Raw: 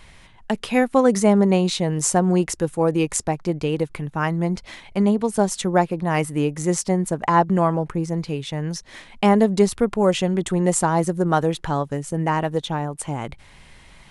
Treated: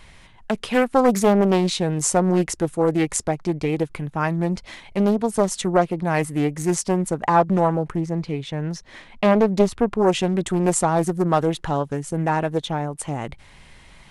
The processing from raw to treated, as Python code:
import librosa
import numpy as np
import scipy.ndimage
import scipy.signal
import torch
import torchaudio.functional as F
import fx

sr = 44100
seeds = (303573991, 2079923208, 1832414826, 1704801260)

y = fx.lowpass(x, sr, hz=3700.0, slope=6, at=(8.0, 10.07))
y = fx.doppler_dist(y, sr, depth_ms=0.5)